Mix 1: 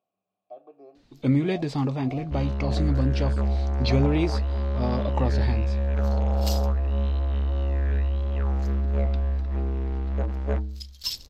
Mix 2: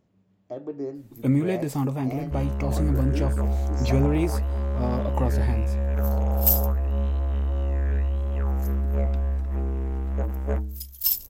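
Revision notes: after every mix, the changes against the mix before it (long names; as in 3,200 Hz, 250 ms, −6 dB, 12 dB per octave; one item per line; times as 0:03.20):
speech: remove formant filter a
master: remove low-pass with resonance 4,300 Hz, resonance Q 2.8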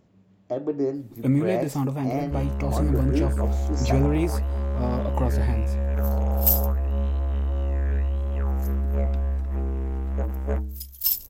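speech +7.0 dB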